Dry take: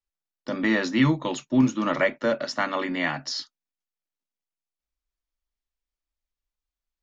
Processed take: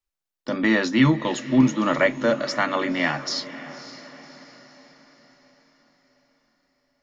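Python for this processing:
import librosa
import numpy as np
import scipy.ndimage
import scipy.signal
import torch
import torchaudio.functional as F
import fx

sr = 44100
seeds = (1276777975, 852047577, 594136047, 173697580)

y = fx.echo_diffused(x, sr, ms=550, feedback_pct=48, wet_db=-14.5)
y = F.gain(torch.from_numpy(y), 3.0).numpy()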